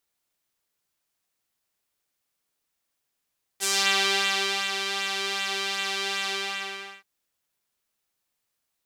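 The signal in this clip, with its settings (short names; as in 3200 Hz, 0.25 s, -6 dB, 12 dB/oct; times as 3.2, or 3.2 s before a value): synth patch with pulse-width modulation G4, sub -6 dB, filter bandpass, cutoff 2400 Hz, Q 1.3, filter envelope 2 oct, filter sustain 30%, attack 33 ms, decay 1.07 s, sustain -8 dB, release 0.74 s, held 2.69 s, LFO 2.6 Hz, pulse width 26%, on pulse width 19%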